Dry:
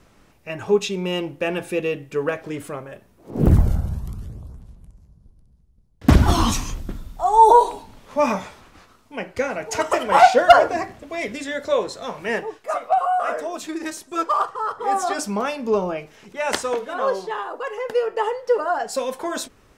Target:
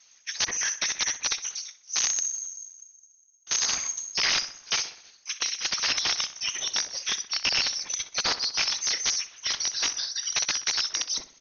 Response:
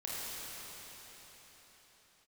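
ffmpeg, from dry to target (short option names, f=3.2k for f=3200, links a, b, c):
-filter_complex "[0:a]alimiter=limit=-11.5dB:level=0:latency=1:release=234,afftfilt=real='hypot(re,im)*cos(2*PI*random(0))':imag='hypot(re,im)*sin(2*PI*random(1))':win_size=512:overlap=0.75,aeval=exprs='(mod(11.2*val(0)+1,2)-1)/11.2':c=same,crystalizer=i=2.5:c=0,lowpass=f=3.2k:t=q:w=0.5098,lowpass=f=3.2k:t=q:w=0.6013,lowpass=f=3.2k:t=q:w=0.9,lowpass=f=3.2k:t=q:w=2.563,afreqshift=-3800,asplit=2[a][b];[b]adelay=109,lowpass=f=1.9k:p=1,volume=-12.5dB,asplit=2[c][d];[d]adelay=109,lowpass=f=1.9k:p=1,volume=0.52,asplit=2[e][f];[f]adelay=109,lowpass=f=1.9k:p=1,volume=0.52,asplit=2[g][h];[h]adelay=109,lowpass=f=1.9k:p=1,volume=0.52,asplit=2[i][j];[j]adelay=109,lowpass=f=1.9k:p=1,volume=0.52[k];[a][c][e][g][i][k]amix=inputs=6:normalize=0,asetrate=76440,aresample=44100,volume=2.5dB"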